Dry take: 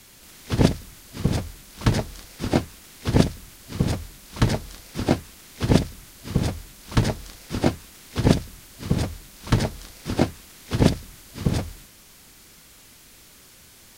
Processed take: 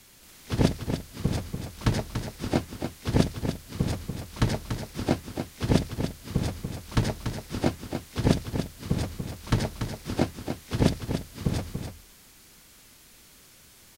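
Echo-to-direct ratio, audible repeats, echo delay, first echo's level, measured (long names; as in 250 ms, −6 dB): −7.5 dB, 1, 288 ms, −7.5 dB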